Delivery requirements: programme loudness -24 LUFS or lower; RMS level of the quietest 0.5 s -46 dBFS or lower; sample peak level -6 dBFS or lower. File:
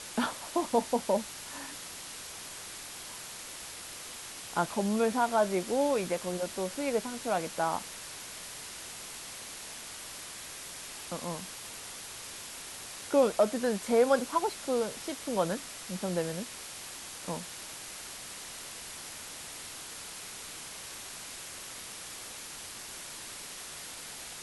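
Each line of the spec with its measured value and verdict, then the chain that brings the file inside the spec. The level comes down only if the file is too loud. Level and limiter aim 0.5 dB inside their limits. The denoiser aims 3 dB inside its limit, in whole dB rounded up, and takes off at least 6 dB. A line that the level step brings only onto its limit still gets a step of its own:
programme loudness -34.0 LUFS: pass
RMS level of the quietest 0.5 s -44 dBFS: fail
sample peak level -12.5 dBFS: pass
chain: noise reduction 6 dB, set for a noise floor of -44 dBFS

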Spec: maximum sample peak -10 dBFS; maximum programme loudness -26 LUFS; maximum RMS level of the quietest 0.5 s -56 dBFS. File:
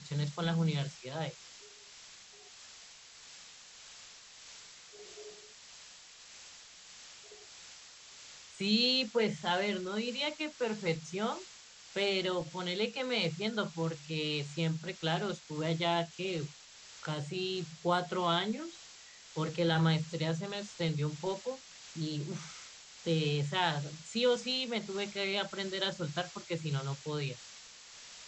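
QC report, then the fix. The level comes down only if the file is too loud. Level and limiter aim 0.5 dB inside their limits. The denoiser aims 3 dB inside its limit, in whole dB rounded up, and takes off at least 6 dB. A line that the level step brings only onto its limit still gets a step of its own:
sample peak -16.0 dBFS: pass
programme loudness -34.0 LUFS: pass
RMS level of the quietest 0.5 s -54 dBFS: fail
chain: noise reduction 6 dB, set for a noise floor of -54 dBFS

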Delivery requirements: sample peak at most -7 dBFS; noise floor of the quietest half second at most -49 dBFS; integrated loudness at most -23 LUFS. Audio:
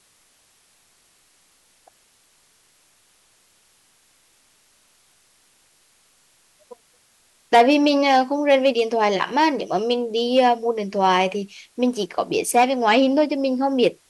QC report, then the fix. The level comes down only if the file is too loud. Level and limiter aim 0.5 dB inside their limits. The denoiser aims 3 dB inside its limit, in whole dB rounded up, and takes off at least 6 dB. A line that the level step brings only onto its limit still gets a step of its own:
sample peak -4.5 dBFS: fail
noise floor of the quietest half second -60 dBFS: pass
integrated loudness -19.5 LUFS: fail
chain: trim -4 dB

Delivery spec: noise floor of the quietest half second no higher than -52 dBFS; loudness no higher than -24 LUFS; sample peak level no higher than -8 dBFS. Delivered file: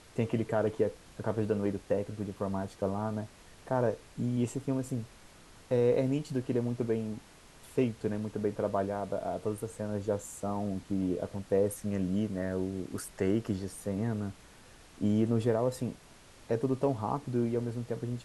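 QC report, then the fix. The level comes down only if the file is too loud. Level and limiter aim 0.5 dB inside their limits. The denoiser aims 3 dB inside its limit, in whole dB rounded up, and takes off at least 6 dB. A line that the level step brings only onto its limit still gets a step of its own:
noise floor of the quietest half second -55 dBFS: pass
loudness -33.0 LUFS: pass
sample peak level -15.0 dBFS: pass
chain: none needed

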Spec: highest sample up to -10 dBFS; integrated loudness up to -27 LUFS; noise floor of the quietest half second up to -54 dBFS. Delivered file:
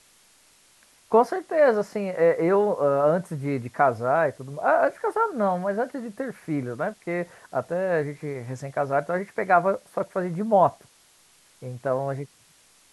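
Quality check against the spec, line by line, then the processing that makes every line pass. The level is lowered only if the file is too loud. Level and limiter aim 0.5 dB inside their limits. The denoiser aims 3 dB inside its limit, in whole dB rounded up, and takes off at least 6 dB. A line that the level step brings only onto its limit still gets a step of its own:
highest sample -5.5 dBFS: fail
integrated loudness -24.5 LUFS: fail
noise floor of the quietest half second -58 dBFS: pass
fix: trim -3 dB; peak limiter -10.5 dBFS

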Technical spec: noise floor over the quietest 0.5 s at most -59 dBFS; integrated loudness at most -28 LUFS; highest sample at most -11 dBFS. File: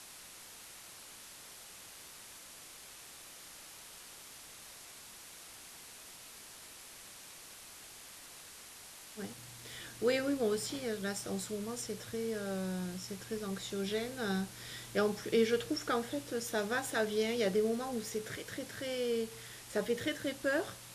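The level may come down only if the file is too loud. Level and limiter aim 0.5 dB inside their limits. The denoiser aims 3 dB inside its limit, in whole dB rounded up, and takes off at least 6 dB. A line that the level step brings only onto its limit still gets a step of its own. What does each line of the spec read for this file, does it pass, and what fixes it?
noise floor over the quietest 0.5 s -52 dBFS: fail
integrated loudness -36.0 LUFS: pass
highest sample -18.0 dBFS: pass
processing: noise reduction 10 dB, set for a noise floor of -52 dBFS

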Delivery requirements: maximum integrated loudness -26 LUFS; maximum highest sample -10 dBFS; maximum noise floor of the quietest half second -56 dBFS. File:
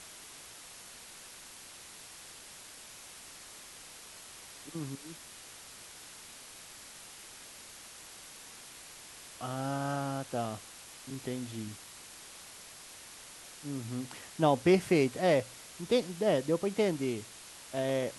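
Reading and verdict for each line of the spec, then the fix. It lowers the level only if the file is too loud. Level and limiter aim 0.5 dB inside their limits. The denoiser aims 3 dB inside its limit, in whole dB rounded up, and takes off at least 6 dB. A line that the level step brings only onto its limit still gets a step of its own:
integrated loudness -32.5 LUFS: pass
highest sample -13.0 dBFS: pass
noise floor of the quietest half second -50 dBFS: fail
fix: noise reduction 9 dB, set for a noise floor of -50 dBFS

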